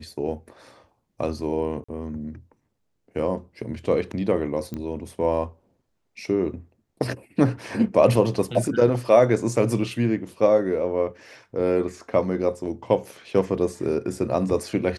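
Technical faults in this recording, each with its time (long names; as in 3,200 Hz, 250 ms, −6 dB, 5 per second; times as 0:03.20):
0:01.84–0:01.89: drop-out 45 ms
0:04.74: click −19 dBFS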